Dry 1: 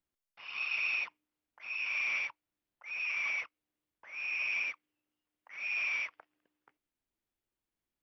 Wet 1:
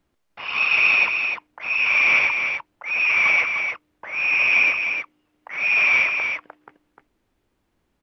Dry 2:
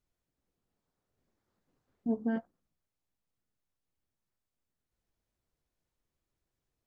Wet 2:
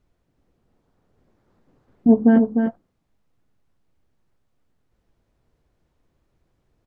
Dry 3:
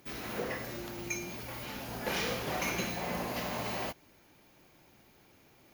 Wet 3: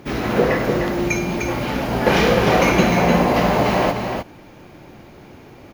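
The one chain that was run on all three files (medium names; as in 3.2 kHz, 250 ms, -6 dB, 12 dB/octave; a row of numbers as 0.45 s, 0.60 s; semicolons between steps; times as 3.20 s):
low-pass 3 kHz 6 dB/octave; tilt shelf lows +3 dB, about 1.1 kHz; delay 302 ms -6 dB; normalise loudness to -18 LUFS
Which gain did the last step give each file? +20.0 dB, +15.0 dB, +18.0 dB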